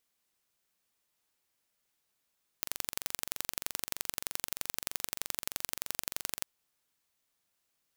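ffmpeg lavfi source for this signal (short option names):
-f lavfi -i "aevalsrc='0.596*eq(mod(n,1901),0)*(0.5+0.5*eq(mod(n,3802),0))':d=3.83:s=44100"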